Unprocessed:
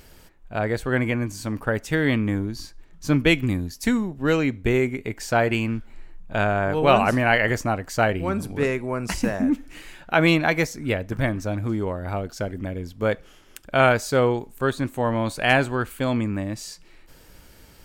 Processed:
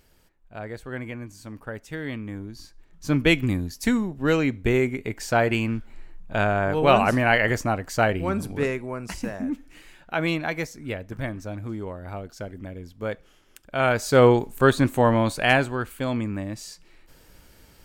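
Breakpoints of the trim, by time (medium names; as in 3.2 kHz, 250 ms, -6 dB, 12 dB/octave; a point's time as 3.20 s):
2.27 s -11 dB
3.30 s -0.5 dB
8.50 s -0.5 dB
9.10 s -7 dB
13.75 s -7 dB
14.26 s +5.5 dB
14.96 s +5.5 dB
15.75 s -3 dB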